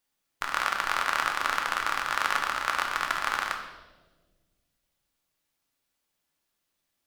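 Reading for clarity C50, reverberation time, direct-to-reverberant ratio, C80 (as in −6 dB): 6.5 dB, 1.4 s, 2.0 dB, 8.5 dB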